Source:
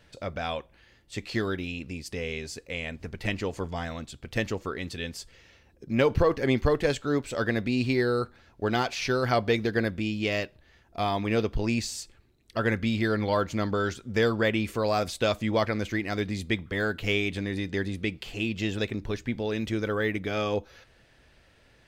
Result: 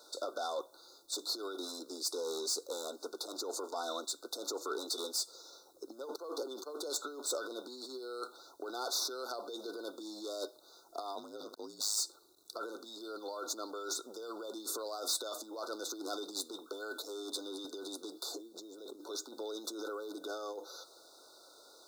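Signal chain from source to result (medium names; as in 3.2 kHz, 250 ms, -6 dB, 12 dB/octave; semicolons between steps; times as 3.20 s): peak limiter -19.5 dBFS, peak gain reduction 9.5 dB; 18.35–19.01 s: tilt shelf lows +6.5 dB, about 810 Hz; compressor with a negative ratio -33 dBFS, ratio -0.5; treble shelf 2.4 kHz +9 dB; saturation -28 dBFS, distortion -10 dB; steep high-pass 310 Hz 48 dB/octave; bit crusher 11-bit; 11.15–11.97 s: ring modulator 52 Hz; FFT band-reject 1.5–3.5 kHz; 17.02–17.65 s: three bands expanded up and down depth 70%; trim -1 dB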